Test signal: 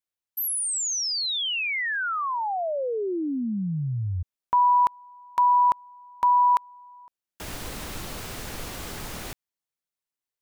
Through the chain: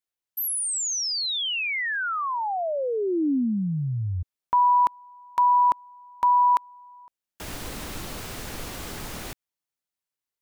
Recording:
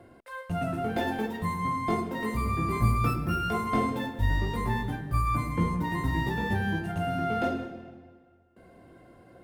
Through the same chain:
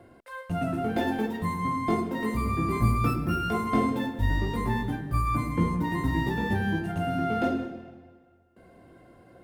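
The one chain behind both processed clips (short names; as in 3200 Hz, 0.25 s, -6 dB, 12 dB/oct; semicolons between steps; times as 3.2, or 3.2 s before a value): dynamic EQ 280 Hz, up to +5 dB, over -43 dBFS, Q 1.6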